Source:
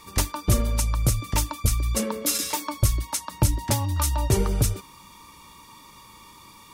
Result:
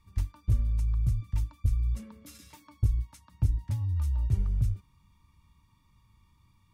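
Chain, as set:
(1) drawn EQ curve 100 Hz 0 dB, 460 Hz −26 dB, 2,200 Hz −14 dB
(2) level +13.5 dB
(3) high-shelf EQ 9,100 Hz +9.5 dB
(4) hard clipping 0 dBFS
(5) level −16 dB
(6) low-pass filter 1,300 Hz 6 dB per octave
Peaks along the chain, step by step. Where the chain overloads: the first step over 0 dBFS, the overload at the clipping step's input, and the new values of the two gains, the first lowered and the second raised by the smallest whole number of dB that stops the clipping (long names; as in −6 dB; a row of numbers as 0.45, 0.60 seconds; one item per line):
−10.5, +3.0, +3.5, 0.0, −16.0, −16.0 dBFS
step 2, 3.5 dB
step 2 +9.5 dB, step 5 −12 dB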